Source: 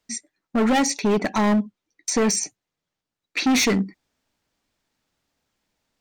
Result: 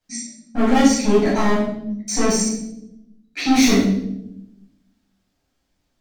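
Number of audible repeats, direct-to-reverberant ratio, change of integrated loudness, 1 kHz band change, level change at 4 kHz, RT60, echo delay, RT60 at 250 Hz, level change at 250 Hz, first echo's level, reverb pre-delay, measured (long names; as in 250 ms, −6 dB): no echo audible, −8.5 dB, +3.0 dB, +2.5 dB, +1.5 dB, 0.85 s, no echo audible, 1.4 s, +5.0 dB, no echo audible, 11 ms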